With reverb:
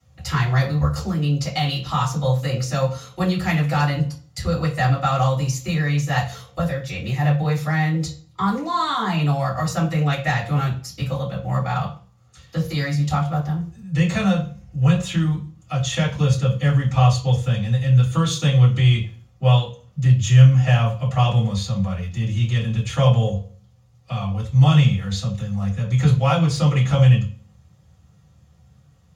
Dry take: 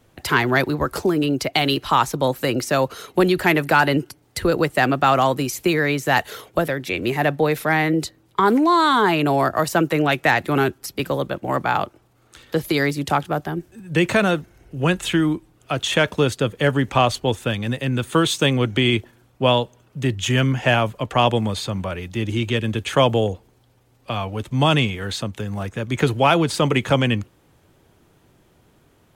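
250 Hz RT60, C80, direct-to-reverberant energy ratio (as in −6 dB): 0.60 s, 14.0 dB, −10.5 dB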